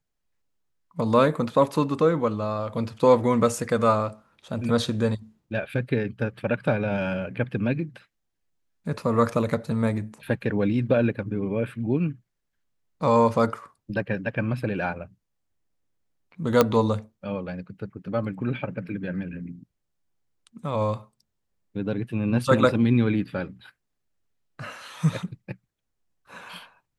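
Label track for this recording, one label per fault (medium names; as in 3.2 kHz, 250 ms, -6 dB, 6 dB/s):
16.610000	16.610000	pop -4 dBFS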